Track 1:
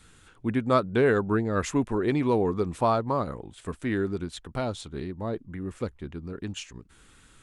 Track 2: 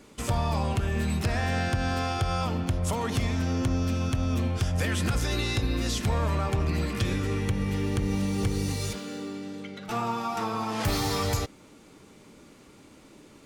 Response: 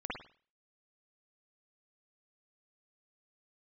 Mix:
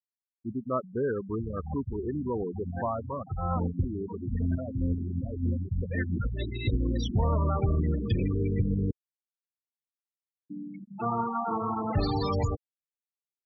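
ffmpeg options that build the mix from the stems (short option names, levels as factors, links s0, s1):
-filter_complex "[0:a]volume=0.447,asplit=2[s0][s1];[1:a]adelay=1100,volume=1.12,asplit=3[s2][s3][s4];[s2]atrim=end=8.91,asetpts=PTS-STARTPTS,afade=t=out:st=8.906:d=0.004:c=hsin[s5];[s3]atrim=start=8.91:end=10.5,asetpts=PTS-STARTPTS,volume=0[s6];[s4]atrim=start=10.5,asetpts=PTS-STARTPTS,afade=t=in:d=0.004:c=hsin[s7];[s5][s6][s7]concat=n=3:v=0:a=1[s8];[s1]apad=whole_len=642015[s9];[s8][s9]sidechaincompress=threshold=0.00447:ratio=6:attack=43:release=138[s10];[s0][s10]amix=inputs=2:normalize=0,afftfilt=real='re*gte(hypot(re,im),0.0794)':imag='im*gte(hypot(re,im),0.0794)':win_size=1024:overlap=0.75"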